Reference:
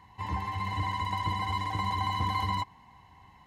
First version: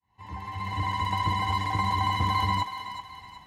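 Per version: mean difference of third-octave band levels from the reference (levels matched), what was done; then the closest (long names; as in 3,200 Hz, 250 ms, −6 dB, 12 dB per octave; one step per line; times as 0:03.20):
3.5 dB: fade in at the beginning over 1.04 s
on a send: feedback echo with a high-pass in the loop 374 ms, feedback 44%, high-pass 780 Hz, level −8.5 dB
on the sum: level +4 dB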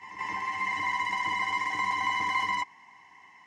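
6.0 dB: loudspeaker in its box 410–9,100 Hz, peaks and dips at 540 Hz −9 dB, 770 Hz −5 dB, 1,400 Hz −5 dB, 2,000 Hz +9 dB, 4,000 Hz −10 dB, 5,600 Hz +9 dB
backwards echo 175 ms −10 dB
level +3 dB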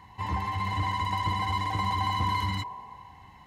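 1.5 dB: healed spectral selection 0:02.31–0:03.14, 360–1,100 Hz both
in parallel at −3.5 dB: soft clipping −33.5 dBFS, distortion −9 dB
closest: third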